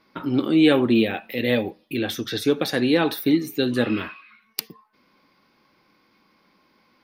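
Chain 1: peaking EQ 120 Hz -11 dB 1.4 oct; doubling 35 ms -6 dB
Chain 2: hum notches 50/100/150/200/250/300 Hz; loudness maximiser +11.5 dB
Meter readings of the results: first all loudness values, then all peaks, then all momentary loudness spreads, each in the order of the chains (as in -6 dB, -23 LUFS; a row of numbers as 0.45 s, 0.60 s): -22.5 LUFS, -12.5 LUFS; -4.5 dBFS, -1.0 dBFS; 14 LU, 13 LU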